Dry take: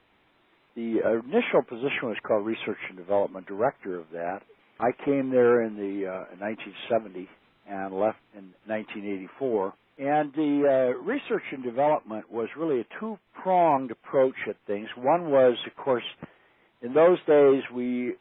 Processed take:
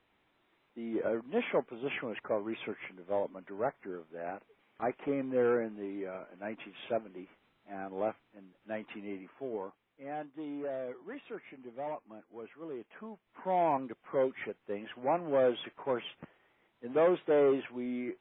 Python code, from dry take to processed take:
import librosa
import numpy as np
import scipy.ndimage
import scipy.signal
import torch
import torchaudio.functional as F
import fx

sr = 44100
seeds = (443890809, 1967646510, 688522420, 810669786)

y = fx.gain(x, sr, db=fx.line((9.02, -8.5), (10.07, -16.0), (12.73, -16.0), (13.48, -8.0)))